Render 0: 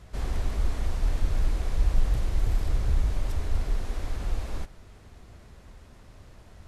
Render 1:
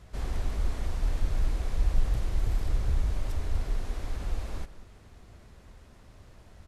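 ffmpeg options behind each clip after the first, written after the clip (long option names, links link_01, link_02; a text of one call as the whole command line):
ffmpeg -i in.wav -filter_complex "[0:a]asplit=2[link_01][link_02];[link_02]adelay=186.6,volume=-16dB,highshelf=frequency=4000:gain=-4.2[link_03];[link_01][link_03]amix=inputs=2:normalize=0,volume=-2.5dB" out.wav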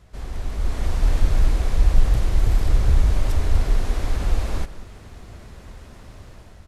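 ffmpeg -i in.wav -af "dynaudnorm=framelen=290:gausssize=5:maxgain=11dB" out.wav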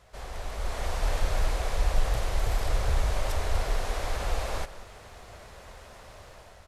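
ffmpeg -i in.wav -af "lowshelf=frequency=400:width_type=q:width=1.5:gain=-9.5" out.wav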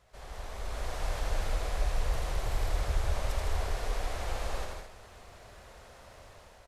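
ffmpeg -i in.wav -af "aecho=1:1:81.63|157.4|212.8:0.631|0.562|0.398,volume=-7dB" out.wav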